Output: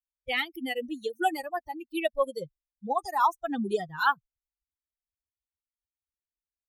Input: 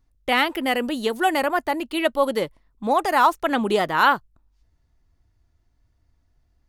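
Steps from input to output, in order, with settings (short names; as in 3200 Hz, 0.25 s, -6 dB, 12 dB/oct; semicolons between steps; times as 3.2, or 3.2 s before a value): per-bin expansion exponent 3; wow and flutter 18 cents; gain -2.5 dB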